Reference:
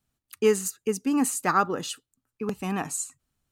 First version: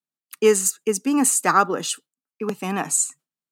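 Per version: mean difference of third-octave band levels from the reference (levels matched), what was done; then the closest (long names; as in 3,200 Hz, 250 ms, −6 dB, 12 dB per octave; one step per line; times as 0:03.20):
1.5 dB: noise gate with hold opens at −45 dBFS
dynamic equaliser 8,000 Hz, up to +6 dB, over −43 dBFS, Q 1.5
elliptic high-pass filter 150 Hz
low-shelf EQ 240 Hz −6 dB
level +6.5 dB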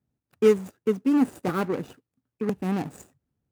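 7.0 dB: running median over 41 samples
high-pass filter 80 Hz
parametric band 3,900 Hz −4 dB 1.5 octaves
notch filter 650 Hz, Q 20
level +4 dB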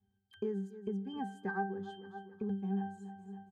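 12.5 dB: dynamic equaliser 1,300 Hz, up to +3 dB, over −32 dBFS, Q 1
resonances in every octave G, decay 0.36 s
repeating echo 279 ms, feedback 40%, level −22 dB
downward compressor 3 to 1, threshold −57 dBFS, peak gain reduction 20.5 dB
level +17.5 dB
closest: first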